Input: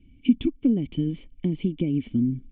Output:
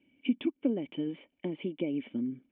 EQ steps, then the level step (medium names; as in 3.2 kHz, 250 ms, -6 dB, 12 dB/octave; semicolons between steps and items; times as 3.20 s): cabinet simulation 420–3000 Hz, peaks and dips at 580 Hz +8 dB, 890 Hz +6 dB, 1.6 kHz +5 dB; 0.0 dB